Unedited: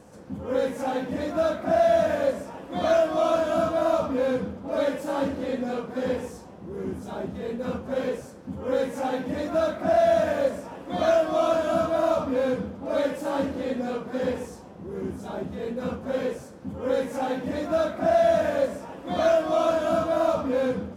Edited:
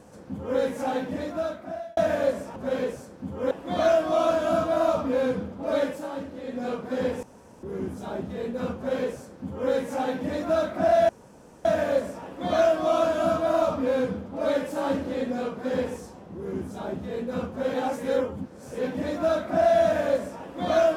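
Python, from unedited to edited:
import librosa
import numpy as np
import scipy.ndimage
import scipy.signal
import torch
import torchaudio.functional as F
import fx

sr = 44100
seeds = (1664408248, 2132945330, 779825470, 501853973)

y = fx.edit(x, sr, fx.fade_out_span(start_s=0.98, length_s=0.99),
    fx.fade_down_up(start_s=4.91, length_s=0.84, db=-8.0, fade_s=0.25),
    fx.room_tone_fill(start_s=6.28, length_s=0.4),
    fx.duplicate(start_s=7.81, length_s=0.95, to_s=2.56),
    fx.insert_room_tone(at_s=10.14, length_s=0.56),
    fx.reverse_span(start_s=16.23, length_s=1.13), tone=tone)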